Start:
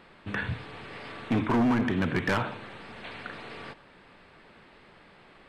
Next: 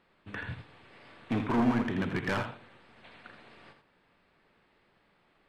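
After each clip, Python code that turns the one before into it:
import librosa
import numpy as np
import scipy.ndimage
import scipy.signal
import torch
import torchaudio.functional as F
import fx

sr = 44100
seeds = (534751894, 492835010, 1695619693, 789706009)

y = x + 10.0 ** (-6.5 / 20.0) * np.pad(x, (int(82 * sr / 1000.0), 0))[:len(x)]
y = fx.upward_expand(y, sr, threshold_db=-44.0, expansion=1.5)
y = y * librosa.db_to_amplitude(-2.0)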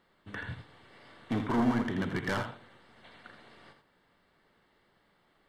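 y = fx.high_shelf(x, sr, hz=5200.0, db=5.0)
y = fx.notch(y, sr, hz=2500.0, q=6.2)
y = y * librosa.db_to_amplitude(-1.0)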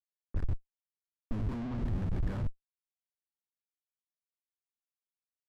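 y = fx.schmitt(x, sr, flips_db=-33.5)
y = fx.riaa(y, sr, side='playback')
y = fx.env_lowpass(y, sr, base_hz=970.0, full_db=-22.0)
y = y * librosa.db_to_amplitude(-6.5)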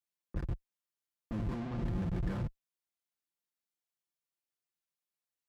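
y = scipy.signal.sosfilt(scipy.signal.butter(2, 42.0, 'highpass', fs=sr, output='sos'), x)
y = y + 0.48 * np.pad(y, (int(5.8 * sr / 1000.0), 0))[:len(y)]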